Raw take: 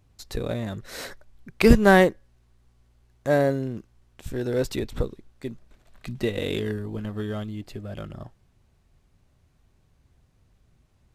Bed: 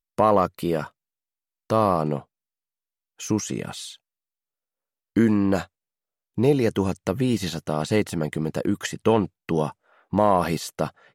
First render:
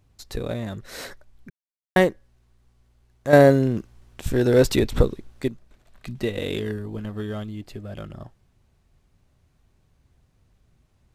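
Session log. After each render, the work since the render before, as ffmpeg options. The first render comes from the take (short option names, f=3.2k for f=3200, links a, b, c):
-filter_complex "[0:a]asplit=5[a][b][c][d][e];[a]atrim=end=1.5,asetpts=PTS-STARTPTS,afade=t=out:st=1.496:d=0.004:c=hsin[f];[b]atrim=start=1.5:end=1.96,asetpts=PTS-STARTPTS,volume=0[g];[c]atrim=start=1.96:end=3.332,asetpts=PTS-STARTPTS,afade=t=in:d=0.004:c=hsin[h];[d]atrim=start=3.328:end=5.482,asetpts=PTS-STARTPTS,volume=8.5dB[i];[e]atrim=start=5.478[j];[f][g][h]concat=n=3:v=0:a=1[k];[k][i]acrossfade=d=0.004:c1=hsin:c2=hsin[l];[l][j]acrossfade=d=0.004:c1=hsin:c2=hsin"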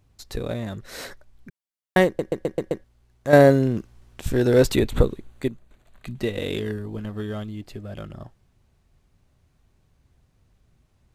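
-filter_complex "[0:a]asettb=1/sr,asplit=3[a][b][c];[a]atrim=end=4.724[d];[b]atrim=start=4.72:end=6.2,asetpts=PTS-STARTPTS,afade=t=in:d=0.004:c=qsin,afade=t=out:st=1.476:d=0.004:c=qsin,equalizer=f=5.3k:t=o:w=0.26:g=-11.5[e];[c]atrim=start=6.196[f];[d][e]acrossfade=d=0.004:c1=hsin:c2=qsin[g];[g][f]acrossfade=d=0.004:c1=qsin:c2=hsin,asplit=7[h][i][j][k][l][m][n];[h]atrim=end=2.192[o];[i]atrim=start=2.058:end=2.192[p];[j]atrim=start=2.058:end=2.192[q];[k]atrim=start=2.058:end=2.192[r];[l]atrim=start=2.058:end=2.192[s];[m]atrim=start=2.058:end=2.192[t];[n]atrim=start=2.838[u];[o][p]acrossfade=d=0.004:c1=hsin:c2=hsin[v];[v][q]acrossfade=d=0.004:c1=hsin:c2=hsin[w];[w][r]acrossfade=d=0.004:c1=hsin:c2=hsin[x];[x][s]acrossfade=d=0.004:c1=hsin:c2=hsin[y];[y][t]acrossfade=d=0.004:c1=hsin:c2=hsin[z];[z][u]acrossfade=d=0.004:c1=hsin:c2=hsin"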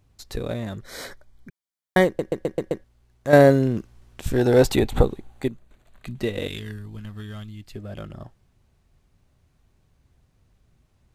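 -filter_complex "[0:a]asettb=1/sr,asplit=3[a][b][c];[a]atrim=end=0.824[d];[b]atrim=start=0.82:end=2.05,asetpts=PTS-STARTPTS,afade=t=in:d=0.004:c=qsin,afade=t=out:st=1.226:d=0.004:c=qsin,asuperstop=centerf=2700:order=20:qfactor=7.1[e];[c]atrim=start=2.046[f];[d][e]acrossfade=d=0.004:c1=hsin:c2=qsin[g];[g][f]acrossfade=d=0.004:c1=qsin:c2=hsin,asettb=1/sr,asplit=3[h][i][j];[h]atrim=end=4.384[k];[i]atrim=start=4.38:end=5.46,asetpts=PTS-STARTPTS,afade=t=in:d=0.004:c=qsin,afade=t=out:st=1.076:d=0.004:c=qsin,equalizer=f=790:w=4.7:g=12[l];[j]atrim=start=5.456[m];[k][l]acrossfade=d=0.004:c1=hsin:c2=qsin[n];[n][m]acrossfade=d=0.004:c1=qsin:c2=hsin,asettb=1/sr,asplit=3[o][p][q];[o]atrim=end=6.474[r];[p]atrim=start=6.47:end=7.75,asetpts=PTS-STARTPTS,afade=t=in:d=0.004:c=qsin,afade=t=out:st=1.276:d=0.004:c=qsin,equalizer=f=470:t=o:w=2.2:g=-14[s];[q]atrim=start=7.746[t];[r][s]acrossfade=d=0.004:c1=hsin:c2=qsin[u];[u][t]acrossfade=d=0.004:c1=qsin:c2=hsin"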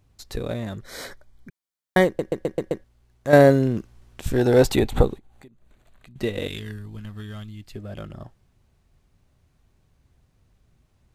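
-filter_complex "[0:a]asettb=1/sr,asplit=3[a][b][c];[a]atrim=end=5.184[d];[b]atrim=start=5.18:end=6.16,asetpts=PTS-STARTPTS,afade=t=in:d=0.004:c=qsin,afade=t=out:st=0.976:d=0.004:c=qsin,acompressor=threshold=-49dB:ratio=4:attack=3.2:release=140:knee=1:detection=peak[e];[c]atrim=start=6.156[f];[d][e]acrossfade=d=0.004:c1=hsin:c2=qsin[g];[g][f]acrossfade=d=0.004:c1=qsin:c2=hsin"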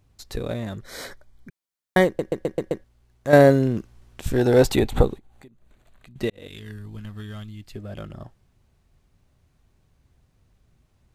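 -filter_complex "[0:a]asplit=2[a][b];[a]atrim=end=6.3,asetpts=PTS-STARTPTS,afade=t=out:st=6.296:d=0.004:c=hsin[c];[b]atrim=start=6.3,asetpts=PTS-STARTPTS,afade=t=in:d=0.58[d];[c][d]concat=n=2:v=0:a=1"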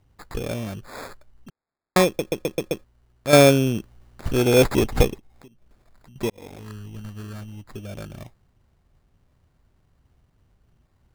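-af "acrusher=samples=15:mix=1:aa=0.000001"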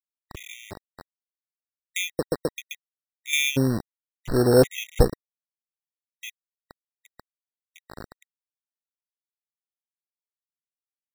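-af "aeval=exprs='val(0)*gte(abs(val(0)),0.0422)':c=same,afftfilt=real='re*gt(sin(2*PI*1.4*pts/sr)*(1-2*mod(floor(b*sr/1024/1900),2)),0)':imag='im*gt(sin(2*PI*1.4*pts/sr)*(1-2*mod(floor(b*sr/1024/1900),2)),0)':win_size=1024:overlap=0.75"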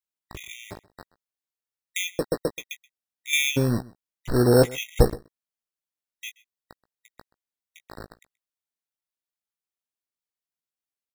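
-filter_complex "[0:a]asplit=2[a][b];[b]adelay=17,volume=-9dB[c];[a][c]amix=inputs=2:normalize=0,asplit=2[d][e];[e]adelay=128.3,volume=-22dB,highshelf=f=4k:g=-2.89[f];[d][f]amix=inputs=2:normalize=0"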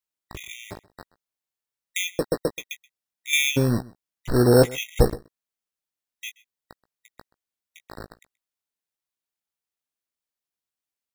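-af "volume=1.5dB,alimiter=limit=-3dB:level=0:latency=1"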